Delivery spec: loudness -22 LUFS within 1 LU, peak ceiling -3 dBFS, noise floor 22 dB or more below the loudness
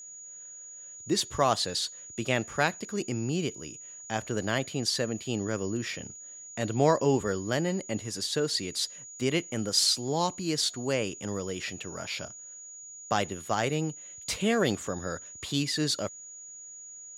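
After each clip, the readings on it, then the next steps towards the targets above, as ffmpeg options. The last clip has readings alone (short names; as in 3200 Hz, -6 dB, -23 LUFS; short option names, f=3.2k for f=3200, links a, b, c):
steady tone 6800 Hz; tone level -43 dBFS; loudness -29.5 LUFS; peak -9.0 dBFS; loudness target -22.0 LUFS
-> -af "bandreject=f=6.8k:w=30"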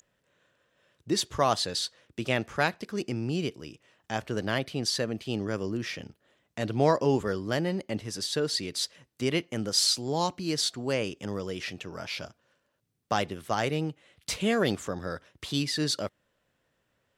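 steady tone none; loudness -29.5 LUFS; peak -9.0 dBFS; loudness target -22.0 LUFS
-> -af "volume=7.5dB,alimiter=limit=-3dB:level=0:latency=1"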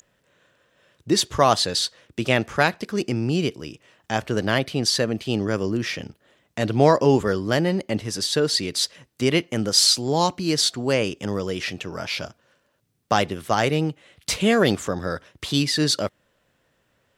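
loudness -22.5 LUFS; peak -3.0 dBFS; noise floor -68 dBFS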